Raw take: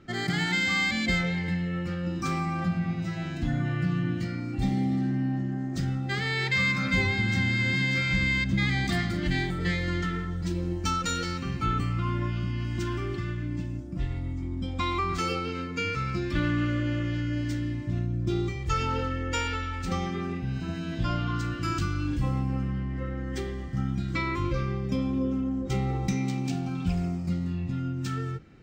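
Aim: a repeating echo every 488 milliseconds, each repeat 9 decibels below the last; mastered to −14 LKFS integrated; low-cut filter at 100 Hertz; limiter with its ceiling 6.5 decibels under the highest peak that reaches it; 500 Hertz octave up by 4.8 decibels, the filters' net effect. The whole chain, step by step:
high-pass filter 100 Hz
parametric band 500 Hz +6.5 dB
brickwall limiter −19.5 dBFS
repeating echo 488 ms, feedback 35%, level −9 dB
level +15 dB

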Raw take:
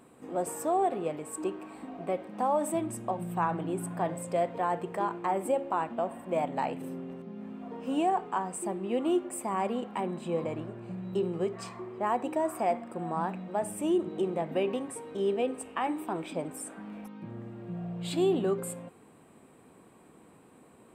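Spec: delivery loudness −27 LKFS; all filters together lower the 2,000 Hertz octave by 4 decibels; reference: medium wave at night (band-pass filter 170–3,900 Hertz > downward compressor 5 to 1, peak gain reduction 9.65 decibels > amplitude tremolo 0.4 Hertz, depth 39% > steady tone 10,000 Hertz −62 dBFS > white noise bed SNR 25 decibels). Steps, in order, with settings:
band-pass filter 170–3,900 Hz
parametric band 2,000 Hz −5 dB
downward compressor 5 to 1, threshold −33 dBFS
amplitude tremolo 0.4 Hz, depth 39%
steady tone 10,000 Hz −62 dBFS
white noise bed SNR 25 dB
level +13.5 dB

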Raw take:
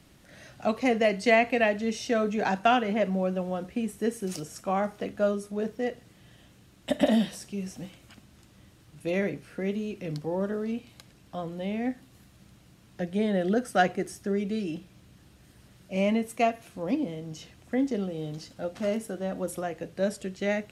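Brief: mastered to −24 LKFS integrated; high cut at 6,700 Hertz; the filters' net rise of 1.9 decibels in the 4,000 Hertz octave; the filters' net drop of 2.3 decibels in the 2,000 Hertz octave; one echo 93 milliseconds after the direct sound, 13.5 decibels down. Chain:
low-pass filter 6,700 Hz
parametric band 2,000 Hz −4 dB
parametric band 4,000 Hz +5 dB
single-tap delay 93 ms −13.5 dB
level +5 dB

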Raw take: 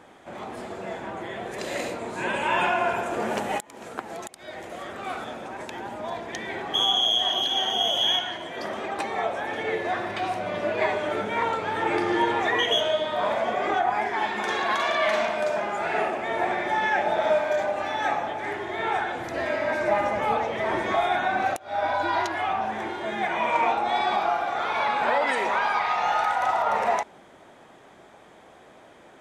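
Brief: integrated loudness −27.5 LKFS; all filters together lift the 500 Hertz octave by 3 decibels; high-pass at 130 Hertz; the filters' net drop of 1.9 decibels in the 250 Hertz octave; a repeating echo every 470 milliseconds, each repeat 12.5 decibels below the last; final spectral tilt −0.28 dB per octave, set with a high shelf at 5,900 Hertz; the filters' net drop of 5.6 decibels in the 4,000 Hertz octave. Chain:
high-pass filter 130 Hz
parametric band 250 Hz −6 dB
parametric band 500 Hz +5.5 dB
parametric band 4,000 Hz −5.5 dB
high-shelf EQ 5,900 Hz −7 dB
repeating echo 470 ms, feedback 24%, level −12.5 dB
level −2.5 dB

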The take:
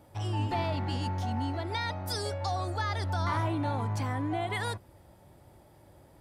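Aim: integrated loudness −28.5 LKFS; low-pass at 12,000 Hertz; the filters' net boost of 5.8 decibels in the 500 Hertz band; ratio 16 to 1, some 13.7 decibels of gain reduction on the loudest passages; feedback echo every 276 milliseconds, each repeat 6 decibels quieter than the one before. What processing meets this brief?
low-pass filter 12,000 Hz
parametric band 500 Hz +8 dB
downward compressor 16 to 1, threshold −38 dBFS
repeating echo 276 ms, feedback 50%, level −6 dB
level +13.5 dB

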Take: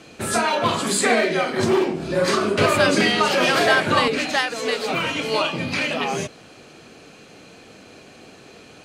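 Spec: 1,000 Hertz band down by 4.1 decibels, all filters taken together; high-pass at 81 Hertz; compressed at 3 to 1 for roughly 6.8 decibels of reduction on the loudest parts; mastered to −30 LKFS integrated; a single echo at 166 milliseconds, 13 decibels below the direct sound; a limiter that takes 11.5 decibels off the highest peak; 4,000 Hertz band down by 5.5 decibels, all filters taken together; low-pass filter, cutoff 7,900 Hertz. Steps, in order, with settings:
high-pass filter 81 Hz
low-pass filter 7,900 Hz
parametric band 1,000 Hz −5 dB
parametric band 4,000 Hz −7 dB
downward compressor 3 to 1, threshold −24 dBFS
brickwall limiter −24.5 dBFS
single-tap delay 166 ms −13 dB
level +2.5 dB

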